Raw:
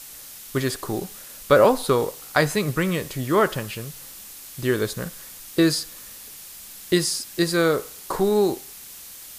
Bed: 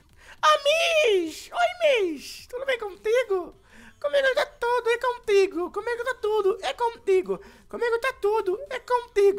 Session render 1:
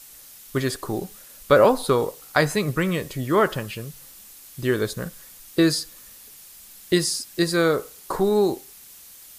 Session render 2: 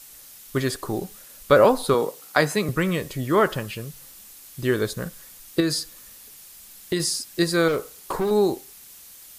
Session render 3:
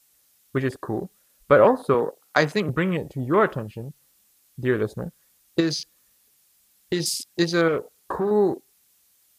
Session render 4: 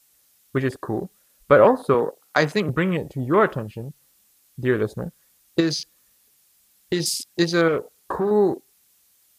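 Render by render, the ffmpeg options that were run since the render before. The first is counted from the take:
-af "afftdn=nr=6:nf=-41"
-filter_complex "[0:a]asettb=1/sr,asplit=3[s0][s1][s2];[s0]atrim=end=1.944[s3];[s1]atrim=start=1.94:end=2.69,asetpts=PTS-STARTPTS,afade=t=in:d=0.004:c=qsin,afade=t=out:st=0.746:d=0.004:c=qsin,highpass=f=150:w=0.5412,highpass=f=150:w=1.3066[s4];[s2]atrim=start=2.686[s5];[s3][s4]acrossfade=d=0.004:c1=hsin:c2=qsin[s6];[s6][s5]acrossfade=d=0.004:c1=qsin:c2=hsin,asettb=1/sr,asplit=3[s7][s8][s9];[s7]atrim=end=5.604[s10];[s8]atrim=start=5.6:end=7,asetpts=PTS-STARTPTS,afade=t=in:d=0.004:c=qsin,afade=t=out:st=1.396:d=0.004:c=qsin,acompressor=threshold=0.1:ratio=3:attack=3.2:release=140:knee=1:detection=peak[s11];[s9]atrim=start=6.996[s12];[s10][s11]acrossfade=d=0.004:c1=hsin:c2=qsin[s13];[s13][s12]acrossfade=d=0.004:c1=qsin:c2=hsin,asettb=1/sr,asplit=3[s14][s15][s16];[s14]atrim=end=7.684[s17];[s15]atrim=start=7.68:end=8.31,asetpts=PTS-STARTPTS,afade=t=in:d=0.004:c=qsin,afade=t=out:st=0.626:d=0.004:c=qsin,asoftclip=type=hard:threshold=0.1[s18];[s16]atrim=start=8.306[s19];[s17][s18]acrossfade=d=0.004:c1=hsin:c2=qsin[s20];[s20][s19]acrossfade=d=0.004:c1=qsin:c2=hsin"
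-af "highpass=44,afwtdn=0.02"
-af "volume=1.19,alimiter=limit=0.708:level=0:latency=1"

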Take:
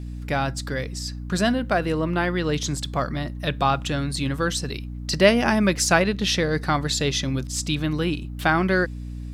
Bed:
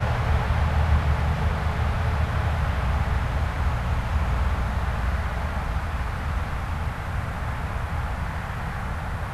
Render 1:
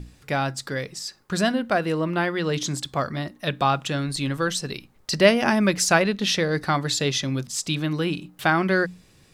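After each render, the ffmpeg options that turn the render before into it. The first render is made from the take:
-af "bandreject=f=60:t=h:w=6,bandreject=f=120:t=h:w=6,bandreject=f=180:t=h:w=6,bandreject=f=240:t=h:w=6,bandreject=f=300:t=h:w=6"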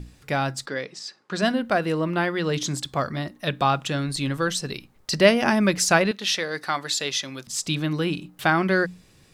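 -filter_complex "[0:a]asplit=3[s0][s1][s2];[s0]afade=t=out:st=0.65:d=0.02[s3];[s1]highpass=230,lowpass=5300,afade=t=in:st=0.65:d=0.02,afade=t=out:st=1.41:d=0.02[s4];[s2]afade=t=in:st=1.41:d=0.02[s5];[s3][s4][s5]amix=inputs=3:normalize=0,asettb=1/sr,asplit=3[s6][s7][s8];[s6]atrim=end=6.114[s9];[s7]atrim=start=6.11:end=7.47,asetpts=PTS-STARTPTS,afade=t=in:d=0.004:c=qsin,afade=t=out:st=1.356:d=0.004:c=qsin,highpass=f=810:p=1[s10];[s8]atrim=start=7.466[s11];[s9][s10]acrossfade=d=0.004:c1=hsin:c2=qsin[s12];[s12][s11]acrossfade=d=0.004:c1=qsin:c2=hsin"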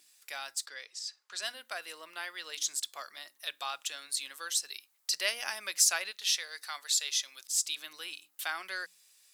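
-af "highpass=500,aderivative"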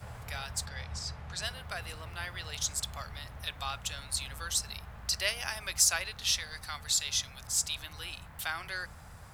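-filter_complex "[1:a]volume=0.0891[s0];[0:a][s0]amix=inputs=2:normalize=0"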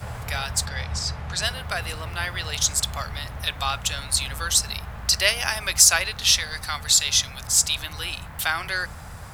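-af "volume=3.55,alimiter=limit=0.891:level=0:latency=1"

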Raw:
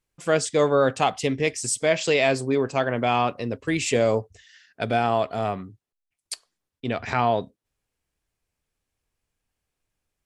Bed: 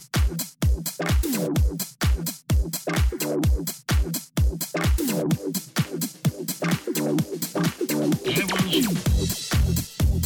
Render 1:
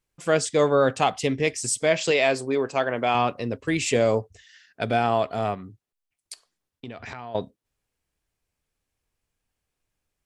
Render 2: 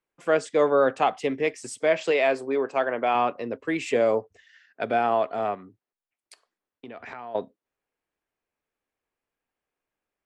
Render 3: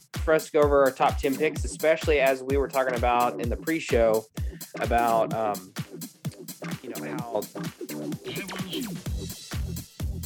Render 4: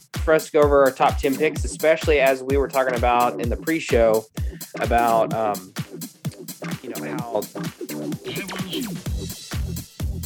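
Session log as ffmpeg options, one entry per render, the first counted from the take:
-filter_complex "[0:a]asettb=1/sr,asplit=3[s0][s1][s2];[s0]atrim=end=2.114[s3];[s1]atrim=start=2.11:end=3.15,asetpts=PTS-STARTPTS,afade=t=in:d=0.004:c=qsin,afade=t=out:st=1.036:d=0.004:c=qsin,bass=f=250:g=-8,treble=f=4000:g=-1[s4];[s2]atrim=start=3.146[s5];[s3][s4]acrossfade=d=0.004:c1=hsin:c2=qsin[s6];[s6][s5]acrossfade=d=0.004:c1=qsin:c2=hsin,asettb=1/sr,asplit=3[s7][s8][s9];[s7]atrim=end=5.544[s10];[s8]atrim=start=5.54:end=7.35,asetpts=PTS-STARTPTS,afade=t=in:d=0.004:c=qsin,afade=t=out:st=1.806:d=0.004:c=qsin,acompressor=threshold=0.02:ratio=6:attack=3.2:release=140:knee=1:detection=peak[s11];[s9]atrim=start=7.346[s12];[s10][s11]acrossfade=d=0.004:c1=hsin:c2=qsin[s13];[s13][s12]acrossfade=d=0.004:c1=qsin:c2=hsin"
-filter_complex "[0:a]acrossover=split=230 2600:gain=0.141 1 0.224[s0][s1][s2];[s0][s1][s2]amix=inputs=3:normalize=0"
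-filter_complex "[1:a]volume=0.299[s0];[0:a][s0]amix=inputs=2:normalize=0"
-af "volume=1.68"

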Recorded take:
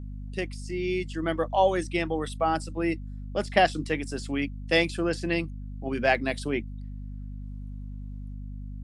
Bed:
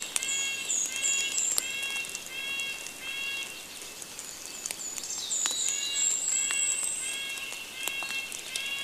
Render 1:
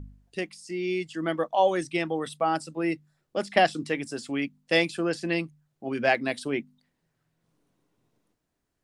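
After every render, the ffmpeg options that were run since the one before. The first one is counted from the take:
-af "bandreject=f=50:t=h:w=4,bandreject=f=100:t=h:w=4,bandreject=f=150:t=h:w=4,bandreject=f=200:t=h:w=4,bandreject=f=250:t=h:w=4"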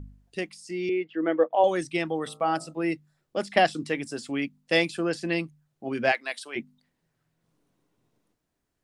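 -filter_complex "[0:a]asettb=1/sr,asplit=3[s0][s1][s2];[s0]atrim=end=0.894[s3];[s1]atrim=start=0.89:end=1.64,asetpts=PTS-STARTPTS,afade=t=in:d=0.004:c=qsin,afade=t=out:st=0.746:d=0.004:c=qsin,highpass=290,equalizer=f=310:t=q:w=4:g=6,equalizer=f=470:t=q:w=4:g=9,equalizer=f=1100:t=q:w=4:g=-4,lowpass=f=2600:w=0.5412,lowpass=f=2600:w=1.3066[s4];[s2]atrim=start=1.636[s5];[s3][s4]acrossfade=d=0.004:c1=hsin:c2=qsin[s6];[s6][s5]acrossfade=d=0.004:c1=qsin:c2=hsin,asplit=3[s7][s8][s9];[s7]afade=t=out:st=2.26:d=0.02[s10];[s8]bandreject=f=55.59:t=h:w=4,bandreject=f=111.18:t=h:w=4,bandreject=f=166.77:t=h:w=4,bandreject=f=222.36:t=h:w=4,bandreject=f=277.95:t=h:w=4,bandreject=f=333.54:t=h:w=4,bandreject=f=389.13:t=h:w=4,bandreject=f=444.72:t=h:w=4,bandreject=f=500.31:t=h:w=4,bandreject=f=555.9:t=h:w=4,bandreject=f=611.49:t=h:w=4,bandreject=f=667.08:t=h:w=4,bandreject=f=722.67:t=h:w=4,bandreject=f=778.26:t=h:w=4,bandreject=f=833.85:t=h:w=4,bandreject=f=889.44:t=h:w=4,bandreject=f=945.03:t=h:w=4,bandreject=f=1000.62:t=h:w=4,bandreject=f=1056.21:t=h:w=4,bandreject=f=1111.8:t=h:w=4,bandreject=f=1167.39:t=h:w=4,bandreject=f=1222.98:t=h:w=4,bandreject=f=1278.57:t=h:w=4,bandreject=f=1334.16:t=h:w=4,afade=t=in:st=2.26:d=0.02,afade=t=out:st=2.72:d=0.02[s11];[s9]afade=t=in:st=2.72:d=0.02[s12];[s10][s11][s12]amix=inputs=3:normalize=0,asplit=3[s13][s14][s15];[s13]afade=t=out:st=6.11:d=0.02[s16];[s14]highpass=880,afade=t=in:st=6.11:d=0.02,afade=t=out:st=6.55:d=0.02[s17];[s15]afade=t=in:st=6.55:d=0.02[s18];[s16][s17][s18]amix=inputs=3:normalize=0"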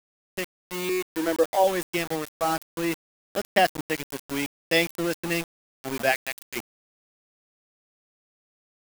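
-af "aeval=exprs='val(0)*gte(abs(val(0)),0.0335)':c=same,crystalizer=i=1:c=0"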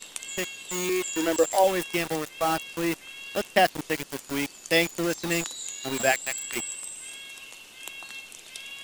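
-filter_complex "[1:a]volume=0.447[s0];[0:a][s0]amix=inputs=2:normalize=0"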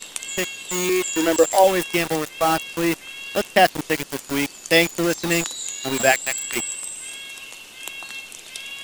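-af "volume=2,alimiter=limit=0.891:level=0:latency=1"

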